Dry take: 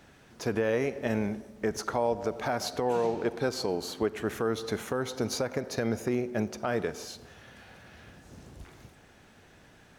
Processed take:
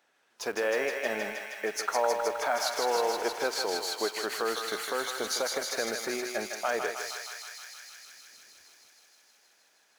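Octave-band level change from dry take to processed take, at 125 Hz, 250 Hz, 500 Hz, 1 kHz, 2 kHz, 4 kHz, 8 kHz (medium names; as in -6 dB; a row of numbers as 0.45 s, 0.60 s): under -20 dB, -9.5 dB, -1.0 dB, +3.5 dB, +5.5 dB, +6.0 dB, +6.5 dB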